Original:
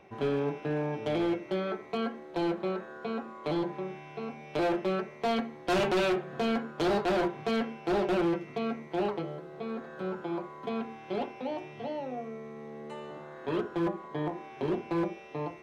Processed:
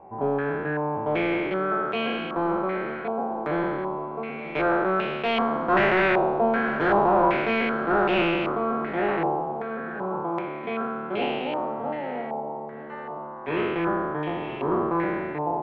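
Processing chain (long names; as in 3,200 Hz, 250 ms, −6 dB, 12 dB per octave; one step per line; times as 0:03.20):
peak hold with a decay on every bin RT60 2.17 s
single-tap delay 928 ms −14.5 dB
low-pass on a step sequencer 2.6 Hz 860–2,700 Hz
level +1 dB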